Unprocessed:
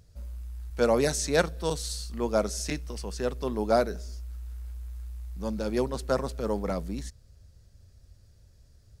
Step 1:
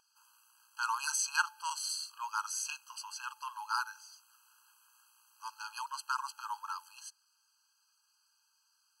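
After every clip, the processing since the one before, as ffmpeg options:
ffmpeg -i in.wav -af "bandreject=frequency=51.2:width_type=h:width=4,bandreject=frequency=102.4:width_type=h:width=4,bandreject=frequency=153.6:width_type=h:width=4,bandreject=frequency=204.8:width_type=h:width=4,bandreject=frequency=256:width_type=h:width=4,bandreject=frequency=307.2:width_type=h:width=4,bandreject=frequency=358.4:width_type=h:width=4,bandreject=frequency=409.6:width_type=h:width=4,bandreject=frequency=460.8:width_type=h:width=4,bandreject=frequency=512:width_type=h:width=4,bandreject=frequency=563.2:width_type=h:width=4,bandreject=frequency=614.4:width_type=h:width=4,bandreject=frequency=665.6:width_type=h:width=4,bandreject=frequency=716.8:width_type=h:width=4,bandreject=frequency=768:width_type=h:width=4,bandreject=frequency=819.2:width_type=h:width=4,bandreject=frequency=870.4:width_type=h:width=4,afftfilt=real='re*eq(mod(floor(b*sr/1024/820),2),1)':imag='im*eq(mod(floor(b*sr/1024/820),2),1)':win_size=1024:overlap=0.75,volume=1.5dB" out.wav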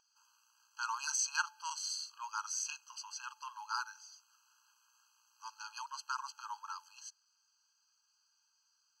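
ffmpeg -i in.wav -af "highshelf=frequency=7800:width_type=q:width=3:gain=-7,volume=-4.5dB" out.wav

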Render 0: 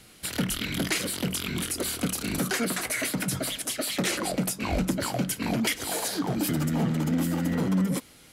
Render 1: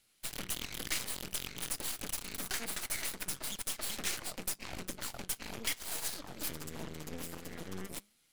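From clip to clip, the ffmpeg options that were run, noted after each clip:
ffmpeg -i in.wav -af "tiltshelf=frequency=1400:gain=-5.5,flanger=delay=3.3:depth=6.8:regen=-89:speed=0.46:shape=triangular,aeval=exprs='0.178*(cos(1*acos(clip(val(0)/0.178,-1,1)))-cos(1*PI/2))+0.0398*(cos(5*acos(clip(val(0)/0.178,-1,1)))-cos(5*PI/2))+0.0447*(cos(7*acos(clip(val(0)/0.178,-1,1)))-cos(7*PI/2))+0.0355*(cos(8*acos(clip(val(0)/0.178,-1,1)))-cos(8*PI/2))':channel_layout=same,volume=-8.5dB" out.wav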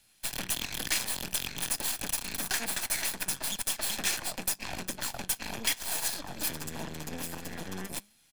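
ffmpeg -i in.wav -filter_complex "[0:a]aecho=1:1:1.2:0.37,acrossover=split=180[link_01][link_02];[link_01]acompressor=threshold=-46dB:ratio=6[link_03];[link_03][link_02]amix=inputs=2:normalize=0,volume=6dB" out.wav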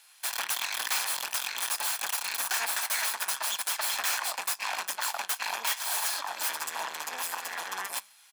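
ffmpeg -i in.wav -af "aeval=exprs='0.178*sin(PI/2*3.55*val(0)/0.178)':channel_layout=same,highpass=frequency=1000:width_type=q:width=2.1,volume=-8dB" out.wav

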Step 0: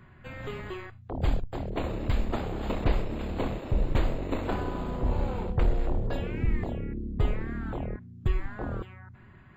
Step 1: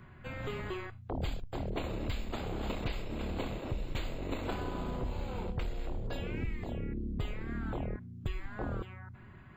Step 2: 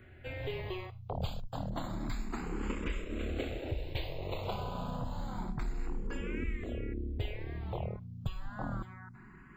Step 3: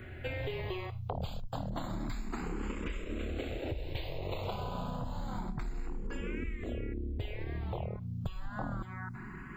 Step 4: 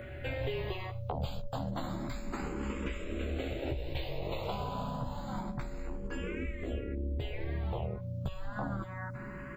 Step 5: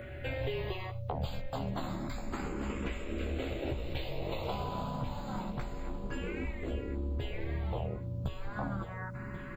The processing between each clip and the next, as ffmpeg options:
ffmpeg -i in.wav -filter_complex "[0:a]bandreject=frequency=1800:width=19,acrossover=split=2100[link_01][link_02];[link_01]acompressor=threshold=-33dB:ratio=6[link_03];[link_03][link_02]amix=inputs=2:normalize=0" out.wav
ffmpeg -i in.wav -filter_complex "[0:a]asplit=2[link_01][link_02];[link_02]afreqshift=0.29[link_03];[link_01][link_03]amix=inputs=2:normalize=1,volume=2.5dB" out.wav
ffmpeg -i in.wav -af "acompressor=threshold=-43dB:ratio=6,volume=9dB" out.wav
ffmpeg -i in.wav -filter_complex "[0:a]aeval=exprs='val(0)+0.00794*sin(2*PI*570*n/s)':channel_layout=same,asplit=2[link_01][link_02];[link_02]adelay=15,volume=-4.5dB[link_03];[link_01][link_03]amix=inputs=2:normalize=0" out.wav
ffmpeg -i in.wav -af "aecho=1:1:1085|2170|3255|4340:0.237|0.0949|0.0379|0.0152" out.wav

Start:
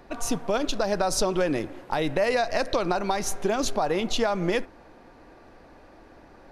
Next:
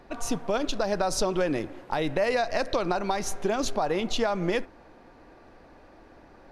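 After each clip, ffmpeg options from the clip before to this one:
ffmpeg -i in.wav -af "highshelf=frequency=9700:gain=-6,volume=-1.5dB" out.wav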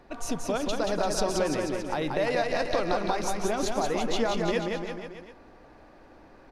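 ffmpeg -i in.wav -af "aecho=1:1:180|342|487.8|619|737.1:0.631|0.398|0.251|0.158|0.1,volume=-2.5dB" out.wav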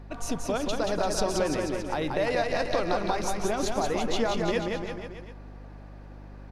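ffmpeg -i in.wav -af "aeval=exprs='val(0)+0.00708*(sin(2*PI*50*n/s)+sin(2*PI*2*50*n/s)/2+sin(2*PI*3*50*n/s)/3+sin(2*PI*4*50*n/s)/4+sin(2*PI*5*50*n/s)/5)':channel_layout=same" out.wav

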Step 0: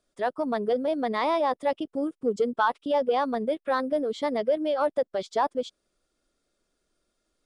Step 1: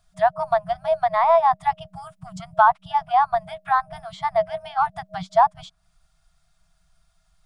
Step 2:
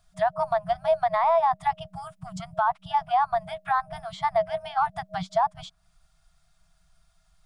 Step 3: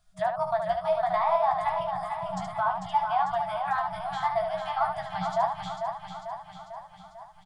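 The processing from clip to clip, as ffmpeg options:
ffmpeg -i in.wav -filter_complex "[0:a]lowshelf=frequency=450:gain=11,acrossover=split=650|1800[link_01][link_02][link_03];[link_03]acompressor=threshold=-50dB:ratio=12[link_04];[link_01][link_02][link_04]amix=inputs=3:normalize=0,afftfilt=real='re*(1-between(b*sr/4096,190,630))':imag='im*(1-between(b*sr/4096,190,630))':win_size=4096:overlap=0.75,volume=7.5dB" out.wav
ffmpeg -i in.wav -af "alimiter=limit=-14dB:level=0:latency=1:release=74" out.wav
ffmpeg -i in.wav -filter_complex "[0:a]asplit=2[link_01][link_02];[link_02]aecho=0:1:446|892|1338|1784|2230|2676|3122|3568:0.473|0.279|0.165|0.0972|0.0573|0.0338|0.02|0.0118[link_03];[link_01][link_03]amix=inputs=2:normalize=0,flanger=delay=1.9:depth=9.8:regen=84:speed=0.65:shape=triangular,asplit=2[link_04][link_05];[link_05]aecho=0:1:16|73:0.501|0.501[link_06];[link_04][link_06]amix=inputs=2:normalize=0" out.wav

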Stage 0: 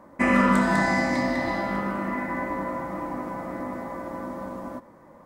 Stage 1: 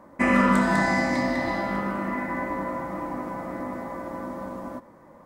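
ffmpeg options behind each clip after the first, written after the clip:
ffmpeg -i in.wav -af anull out.wav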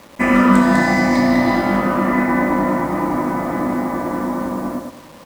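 ffmpeg -i in.wav -filter_complex "[0:a]asplit=2[link_01][link_02];[link_02]adelay=104,lowpass=frequency=1400:poles=1,volume=-4dB,asplit=2[link_03][link_04];[link_04]adelay=104,lowpass=frequency=1400:poles=1,volume=0.31,asplit=2[link_05][link_06];[link_06]adelay=104,lowpass=frequency=1400:poles=1,volume=0.31,asplit=2[link_07][link_08];[link_08]adelay=104,lowpass=frequency=1400:poles=1,volume=0.31[link_09];[link_03][link_05][link_07][link_09]amix=inputs=4:normalize=0[link_10];[link_01][link_10]amix=inputs=2:normalize=0,dynaudnorm=framelen=320:gausssize=7:maxgain=6.5dB,acrusher=bits=7:mix=0:aa=0.000001,volume=5dB" out.wav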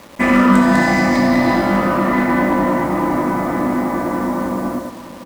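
ffmpeg -i in.wav -filter_complex "[0:a]asplit=2[link_01][link_02];[link_02]asoftclip=type=hard:threshold=-17dB,volume=-6dB[link_03];[link_01][link_03]amix=inputs=2:normalize=0,aecho=1:1:690:0.158,volume=-1dB" out.wav

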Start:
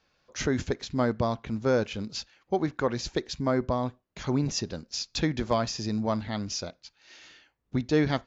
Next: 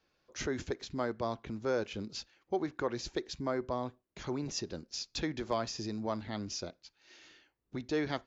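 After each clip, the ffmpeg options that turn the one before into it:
ffmpeg -i in.wav -filter_complex "[0:a]acrossover=split=490[link_01][link_02];[link_01]alimiter=level_in=4dB:limit=-24dB:level=0:latency=1:release=156,volume=-4dB[link_03];[link_03][link_02]amix=inputs=2:normalize=0,equalizer=frequency=350:width_type=o:width=0.65:gain=7,volume=-6.5dB" out.wav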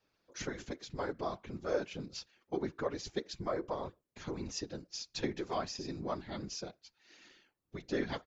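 ffmpeg -i in.wav -af "aecho=1:1:6:0.65,afftfilt=real='hypot(re,im)*cos(2*PI*random(0))':imag='hypot(re,im)*sin(2*PI*random(1))':win_size=512:overlap=0.75,volume=2dB" out.wav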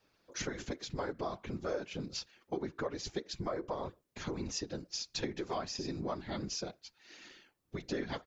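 ffmpeg -i in.wav -af "acompressor=threshold=-41dB:ratio=3,volume=5.5dB" out.wav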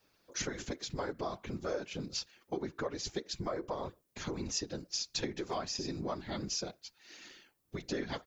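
ffmpeg -i in.wav -af "crystalizer=i=1:c=0" out.wav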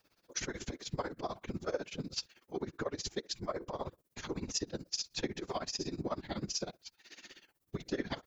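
ffmpeg -i in.wav -af "tremolo=f=16:d=0.88,volume=3dB" out.wav

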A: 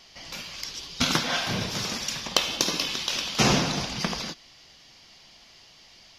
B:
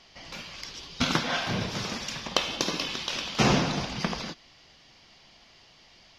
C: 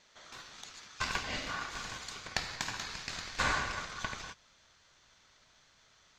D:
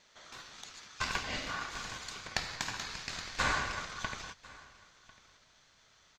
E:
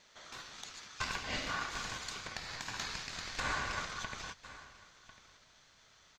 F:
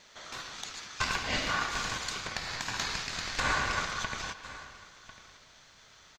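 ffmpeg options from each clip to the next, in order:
ffmpeg -i in.wav -af "aemphasis=mode=reproduction:type=50kf" out.wav
ffmpeg -i in.wav -af "aeval=exprs='val(0)*sin(2*PI*1300*n/s)':channel_layout=same,asubboost=boost=3:cutoff=170,volume=-6dB" out.wav
ffmpeg -i in.wav -af "aecho=1:1:1047:0.0794" out.wav
ffmpeg -i in.wav -af "alimiter=level_in=0.5dB:limit=-24dB:level=0:latency=1:release=218,volume=-0.5dB,volume=1dB" out.wav
ffmpeg -i in.wav -filter_complex "[0:a]asplit=2[link_01][link_02];[link_02]adelay=110,highpass=300,lowpass=3400,asoftclip=type=hard:threshold=-33.5dB,volume=-10dB[link_03];[link_01][link_03]amix=inputs=2:normalize=0,volume=6.5dB" out.wav

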